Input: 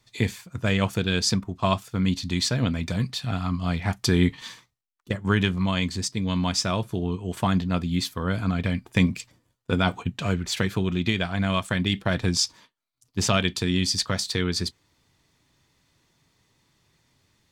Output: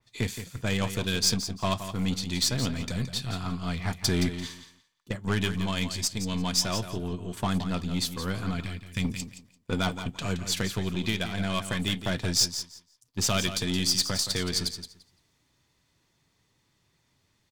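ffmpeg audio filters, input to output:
ffmpeg -i in.wav -filter_complex "[0:a]asettb=1/sr,asplit=3[link_01][link_02][link_03];[link_01]atrim=end=8.604[link_04];[link_02]atrim=start=8.6:end=9.05,asetpts=PTS-STARTPTS,afade=type=in:duration=0.004:curve=qsin,afade=type=out:start_time=0.446:duration=0.004:curve=qsin,equalizer=frequency=540:width_type=o:width=3:gain=-12.5[link_05];[link_03]atrim=start=9.046[link_06];[link_04][link_05]acrossfade=duration=0.004:curve1=hsin:curve2=qsin[link_07];[link_07][link_06]acrossfade=duration=0.004:curve1=qsin:curve2=hsin,aeval=exprs='0.447*(cos(1*acos(clip(val(0)/0.447,-1,1)))-cos(1*PI/2))+0.1*(cos(3*acos(clip(val(0)/0.447,-1,1)))-cos(3*PI/2))+0.0126*(cos(5*acos(clip(val(0)/0.447,-1,1)))-cos(5*PI/2))+0.0316*(cos(6*acos(clip(val(0)/0.447,-1,1)))-cos(6*PI/2))+0.0355*(cos(8*acos(clip(val(0)/0.447,-1,1)))-cos(8*PI/2))':channel_layout=same,asoftclip=type=tanh:threshold=-20.5dB,aecho=1:1:171|342|513:0.299|0.0567|0.0108,adynamicequalizer=threshold=0.00398:dfrequency=3500:dqfactor=0.7:tfrequency=3500:tqfactor=0.7:attack=5:release=100:ratio=0.375:range=3.5:mode=boostabove:tftype=highshelf,volume=2dB" out.wav

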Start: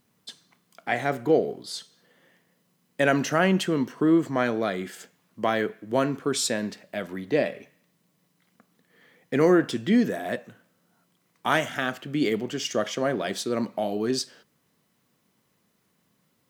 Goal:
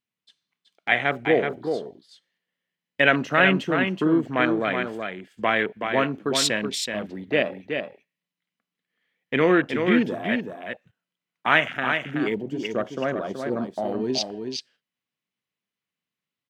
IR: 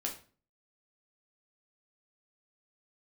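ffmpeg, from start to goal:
-af "afwtdn=0.0251,asetnsamples=nb_out_samples=441:pad=0,asendcmd='11.73 equalizer g 3.5;13.85 equalizer g 13.5',equalizer=frequency=2700:width_type=o:width=1.7:gain=13,agate=range=-8dB:threshold=-45dB:ratio=16:detection=peak,aecho=1:1:376:0.501,volume=-1dB"

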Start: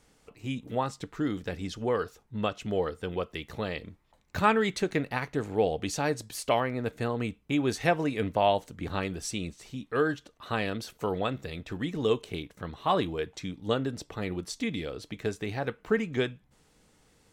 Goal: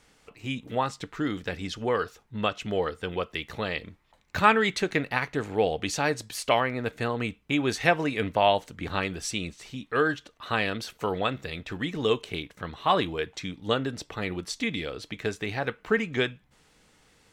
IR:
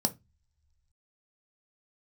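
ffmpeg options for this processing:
-af "equalizer=frequency=2300:width=0.45:gain=6.5"

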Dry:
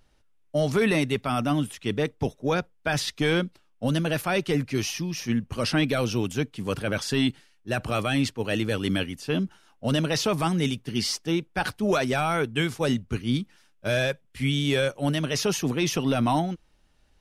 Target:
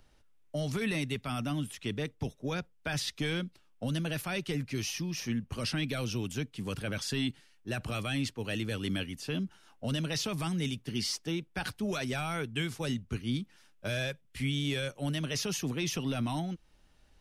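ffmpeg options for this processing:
ffmpeg -i in.wav -filter_complex "[0:a]acrossover=split=240|1800[link_01][link_02][link_03];[link_02]alimiter=level_in=2dB:limit=-24dB:level=0:latency=1:release=423,volume=-2dB[link_04];[link_01][link_04][link_03]amix=inputs=3:normalize=0,acompressor=threshold=-40dB:ratio=1.5" out.wav

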